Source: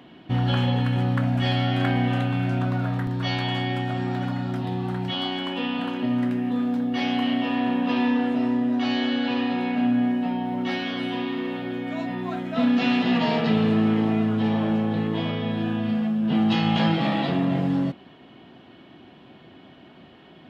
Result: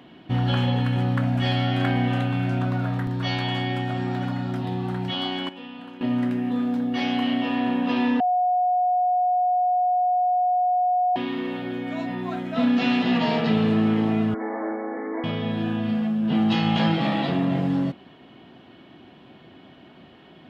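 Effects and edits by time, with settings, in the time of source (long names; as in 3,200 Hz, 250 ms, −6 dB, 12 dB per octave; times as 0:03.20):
0:05.49–0:06.01: clip gain −12 dB
0:08.20–0:11.16: beep over 725 Hz −18 dBFS
0:14.34–0:15.24: linear-phase brick-wall band-pass 240–2,300 Hz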